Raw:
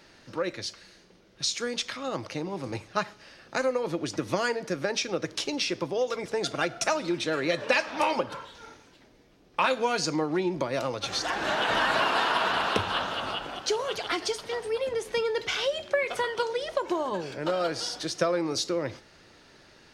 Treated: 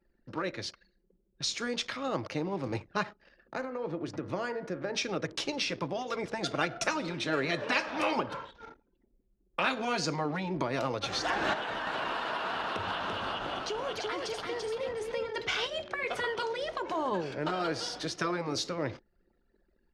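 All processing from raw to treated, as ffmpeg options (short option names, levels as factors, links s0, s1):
-filter_complex "[0:a]asettb=1/sr,asplit=3[s0][s1][s2];[s0]atrim=end=3.544[s3];[s1]atrim=start=3.54:end=4.95,asetpts=PTS-STARTPTS,afade=t=in:d=0.004:c=qsin,afade=t=out:st=1.406:d=0.004:c=qsin,highshelf=f=2300:g=-7,bandreject=f=68.93:t=h:w=4,bandreject=f=137.86:t=h:w=4,bandreject=f=206.79:t=h:w=4,bandreject=f=275.72:t=h:w=4,bandreject=f=344.65:t=h:w=4,bandreject=f=413.58:t=h:w=4,bandreject=f=482.51:t=h:w=4,bandreject=f=551.44:t=h:w=4,bandreject=f=620.37:t=h:w=4,bandreject=f=689.3:t=h:w=4,bandreject=f=758.23:t=h:w=4,bandreject=f=827.16:t=h:w=4,bandreject=f=896.09:t=h:w=4,bandreject=f=965.02:t=h:w=4,bandreject=f=1033.95:t=h:w=4,bandreject=f=1102.88:t=h:w=4,bandreject=f=1171.81:t=h:w=4,bandreject=f=1240.74:t=h:w=4,bandreject=f=1309.67:t=h:w=4,bandreject=f=1378.6:t=h:w=4,bandreject=f=1447.53:t=h:w=4,bandreject=f=1516.46:t=h:w=4,bandreject=f=1585.39:t=h:w=4,bandreject=f=1654.32:t=h:w=4,bandreject=f=1723.25:t=h:w=4,bandreject=f=1792.18:t=h:w=4,bandreject=f=1861.11:t=h:w=4,bandreject=f=1930.04:t=h:w=4,bandreject=f=1998.97:t=h:w=4,bandreject=f=2067.9:t=h:w=4,bandreject=f=2136.83:t=h:w=4,bandreject=f=2205.76:t=h:w=4,bandreject=f=2274.69:t=h:w=4,acompressor=threshold=0.0126:ratio=1.5:attack=3.2:release=140:knee=1:detection=peak[s4];[s2]atrim=start=4.946[s5];[s3][s4]acrossfade=d=0.004:c1=hsin:c2=qsin[s6];[s6][s5]acrossfade=d=0.004:c1=qsin:c2=hsin,asettb=1/sr,asplit=3[s7][s8][s9];[s7]atrim=end=11.534[s10];[s8]atrim=start=11.53:end=15.36,asetpts=PTS-STARTPTS,afade=t=in:d=0.004:c=qsin,afade=t=out:st=3.826:d=0.004:c=qsin,acompressor=threshold=0.0282:ratio=8:attack=3.2:release=140:knee=1:detection=peak,aecho=1:1:339:0.668,atrim=end_sample=168903[s11];[s9]atrim=start=15.356[s12];[s10][s11]acrossfade=d=0.004:c1=hsin:c2=qsin[s13];[s13][s12]acrossfade=d=0.004:c1=qsin:c2=hsin,afftfilt=real='re*lt(hypot(re,im),0.316)':imag='im*lt(hypot(re,im),0.316)':win_size=1024:overlap=0.75,anlmdn=0.0251,aemphasis=mode=reproduction:type=cd"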